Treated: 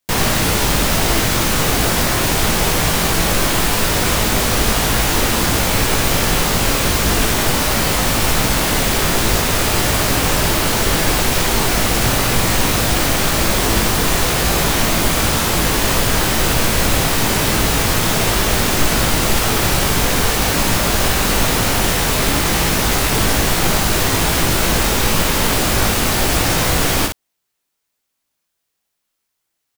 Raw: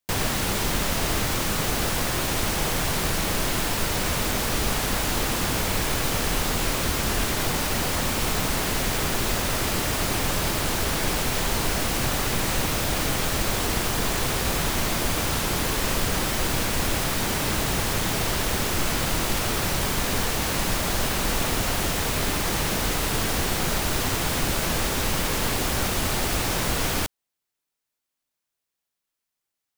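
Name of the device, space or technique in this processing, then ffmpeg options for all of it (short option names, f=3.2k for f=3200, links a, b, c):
slapback doubling: -filter_complex "[0:a]asplit=3[a][b][c];[b]adelay=18,volume=-4dB[d];[c]adelay=60,volume=-4.5dB[e];[a][d][e]amix=inputs=3:normalize=0,volume=6.5dB"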